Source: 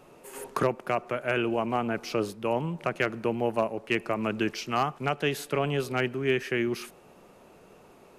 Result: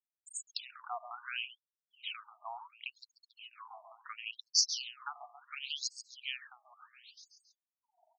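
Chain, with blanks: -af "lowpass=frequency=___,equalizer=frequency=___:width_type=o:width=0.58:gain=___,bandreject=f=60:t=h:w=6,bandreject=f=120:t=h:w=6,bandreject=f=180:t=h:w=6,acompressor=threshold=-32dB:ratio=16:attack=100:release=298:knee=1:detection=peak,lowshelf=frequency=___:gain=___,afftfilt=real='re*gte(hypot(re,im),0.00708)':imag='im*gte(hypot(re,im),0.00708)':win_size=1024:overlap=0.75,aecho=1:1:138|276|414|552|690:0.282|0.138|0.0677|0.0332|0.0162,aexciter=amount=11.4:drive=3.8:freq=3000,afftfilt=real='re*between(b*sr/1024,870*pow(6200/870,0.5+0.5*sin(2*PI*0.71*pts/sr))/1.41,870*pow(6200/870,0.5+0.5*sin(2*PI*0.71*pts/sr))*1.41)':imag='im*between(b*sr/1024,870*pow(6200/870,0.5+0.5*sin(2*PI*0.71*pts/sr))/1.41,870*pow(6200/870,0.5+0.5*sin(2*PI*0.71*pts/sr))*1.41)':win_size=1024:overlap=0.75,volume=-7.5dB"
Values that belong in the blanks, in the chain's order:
9800, 130, -15, 380, 9.5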